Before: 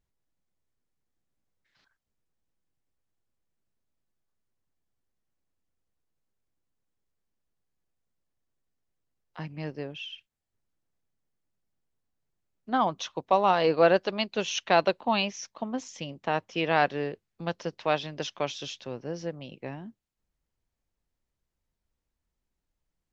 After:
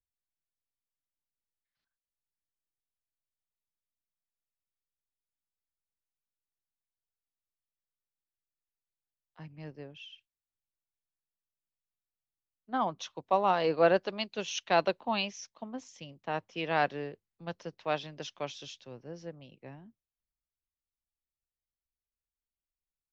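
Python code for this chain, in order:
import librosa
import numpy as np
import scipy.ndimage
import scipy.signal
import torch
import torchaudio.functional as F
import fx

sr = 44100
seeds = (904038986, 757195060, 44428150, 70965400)

y = fx.band_widen(x, sr, depth_pct=40)
y = y * librosa.db_to_amplitude(-6.0)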